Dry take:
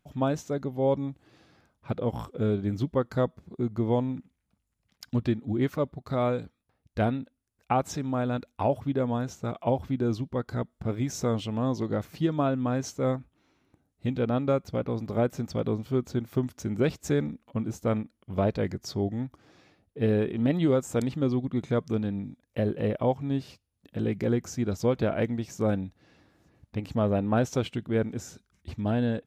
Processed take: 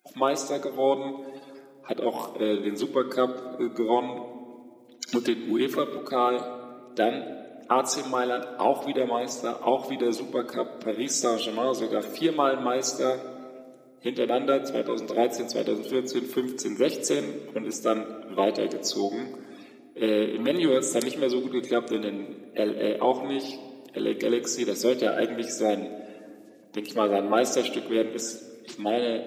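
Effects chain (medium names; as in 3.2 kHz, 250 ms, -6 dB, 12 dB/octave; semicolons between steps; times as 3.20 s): coarse spectral quantiser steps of 30 dB; high-pass 260 Hz 24 dB/octave; treble shelf 2.7 kHz +10 dB; simulated room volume 3500 m³, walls mixed, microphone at 0.88 m; 5.08–5.98 s: three bands compressed up and down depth 100%; trim +3 dB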